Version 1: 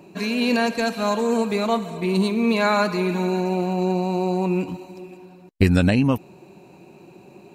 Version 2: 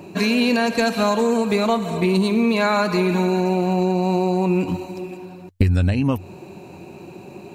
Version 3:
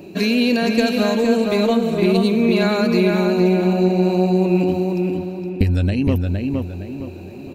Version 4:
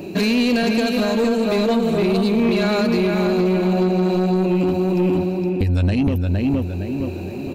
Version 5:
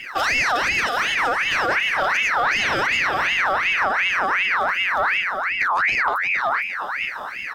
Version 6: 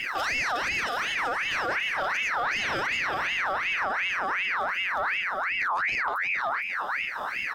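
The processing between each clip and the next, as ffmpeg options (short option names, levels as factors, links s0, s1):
-af "equalizer=f=92:w=6.1:g=13,acompressor=threshold=0.0794:ratio=10,volume=2.37"
-filter_complex "[0:a]equalizer=f=125:t=o:w=1:g=-8,equalizer=f=1000:t=o:w=1:g=-12,equalizer=f=2000:t=o:w=1:g=-3,equalizer=f=8000:t=o:w=1:g=-8,asplit=2[s0][s1];[s1]adelay=464,lowpass=f=2700:p=1,volume=0.708,asplit=2[s2][s3];[s3]adelay=464,lowpass=f=2700:p=1,volume=0.38,asplit=2[s4][s5];[s5]adelay=464,lowpass=f=2700:p=1,volume=0.38,asplit=2[s6][s7];[s7]adelay=464,lowpass=f=2700:p=1,volume=0.38,asplit=2[s8][s9];[s9]adelay=464,lowpass=f=2700:p=1,volume=0.38[s10];[s0][s2][s4][s6][s8][s10]amix=inputs=6:normalize=0,volume=1.58"
-af "alimiter=limit=0.224:level=0:latency=1:release=470,asoftclip=type=tanh:threshold=0.119,volume=2.11"
-af "aeval=exprs='val(0)*sin(2*PI*1700*n/s+1700*0.45/2.7*sin(2*PI*2.7*n/s))':c=same"
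-af "alimiter=limit=0.0668:level=0:latency=1:release=400,volume=1.41"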